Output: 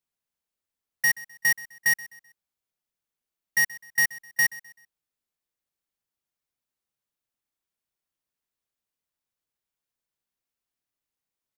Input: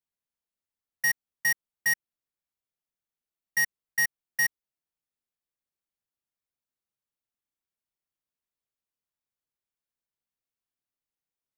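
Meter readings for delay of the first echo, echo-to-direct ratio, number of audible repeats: 128 ms, −19.0 dB, 2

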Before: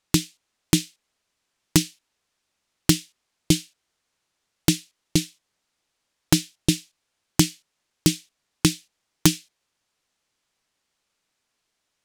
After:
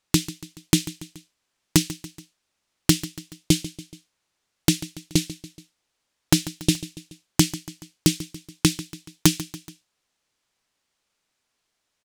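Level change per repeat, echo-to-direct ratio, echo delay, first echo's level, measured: −5.0 dB, −14.5 dB, 142 ms, −16.0 dB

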